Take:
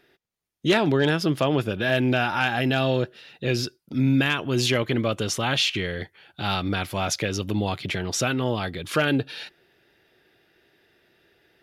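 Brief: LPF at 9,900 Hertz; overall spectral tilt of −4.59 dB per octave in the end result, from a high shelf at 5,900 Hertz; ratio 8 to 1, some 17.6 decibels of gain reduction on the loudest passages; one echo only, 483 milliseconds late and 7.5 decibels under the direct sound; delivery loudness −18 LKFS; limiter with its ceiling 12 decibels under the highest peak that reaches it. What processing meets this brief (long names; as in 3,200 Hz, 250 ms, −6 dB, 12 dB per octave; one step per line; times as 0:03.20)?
low-pass filter 9,900 Hz
high-shelf EQ 5,900 Hz −5 dB
downward compressor 8 to 1, threshold −35 dBFS
brickwall limiter −35 dBFS
single-tap delay 483 ms −7.5 dB
level +26.5 dB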